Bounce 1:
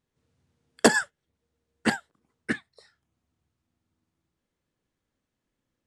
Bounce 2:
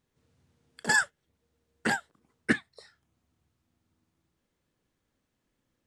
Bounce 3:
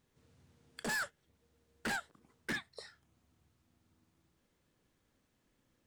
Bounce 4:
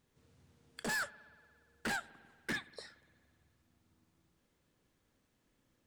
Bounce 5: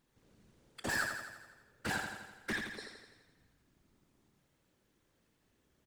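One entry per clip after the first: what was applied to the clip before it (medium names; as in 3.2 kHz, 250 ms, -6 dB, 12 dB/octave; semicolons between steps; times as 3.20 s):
compressor with a negative ratio -23 dBFS, ratio -0.5
peak limiter -23 dBFS, peak gain reduction 11 dB; hard clipper -36 dBFS, distortion -7 dB; trim +2.5 dB
spring tank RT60 2 s, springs 58 ms, chirp 35 ms, DRR 19 dB
whisper effect; on a send: feedback delay 84 ms, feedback 58%, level -5.5 dB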